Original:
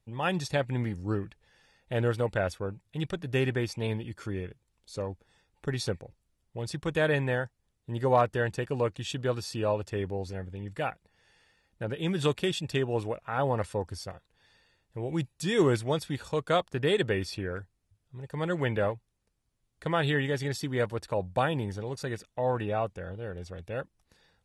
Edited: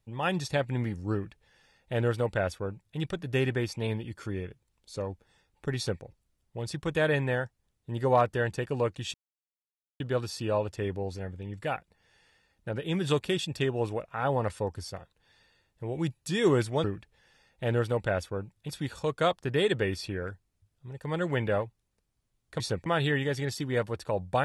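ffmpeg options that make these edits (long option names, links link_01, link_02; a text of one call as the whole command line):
ffmpeg -i in.wav -filter_complex "[0:a]asplit=6[link_01][link_02][link_03][link_04][link_05][link_06];[link_01]atrim=end=9.14,asetpts=PTS-STARTPTS,afade=type=out:start_time=9.136:duration=0.004:curve=hsin,apad=pad_dur=0.86[link_07];[link_02]atrim=start=9.14:end=15.982,asetpts=PTS-STARTPTS,afade=type=in:duration=0.004:curve=hsin[link_08];[link_03]atrim=start=1.128:end=2.982[link_09];[link_04]atrim=start=15.978:end=19.892[link_10];[link_05]atrim=start=5.768:end=6.032[link_11];[link_06]atrim=start=19.888[link_12];[link_07][link_08]concat=n=2:v=0:a=1[link_13];[link_13][link_09]acrossfade=duration=0.004:curve1=hsin:curve2=hsin[link_14];[link_14][link_10]acrossfade=duration=0.004:curve1=hsin:curve2=hsin[link_15];[link_15][link_11]acrossfade=duration=0.004:curve1=hsin:curve2=hsin[link_16];[link_16][link_12]acrossfade=duration=0.004:curve1=hsin:curve2=hsin" out.wav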